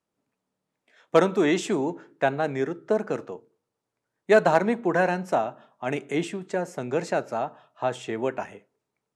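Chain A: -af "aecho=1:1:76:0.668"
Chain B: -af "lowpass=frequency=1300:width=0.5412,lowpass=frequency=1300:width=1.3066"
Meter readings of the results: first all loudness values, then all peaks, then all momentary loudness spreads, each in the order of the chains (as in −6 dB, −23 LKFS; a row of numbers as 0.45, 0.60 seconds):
−24.5, −26.5 LKFS; −4.0, −7.0 dBFS; 11, 12 LU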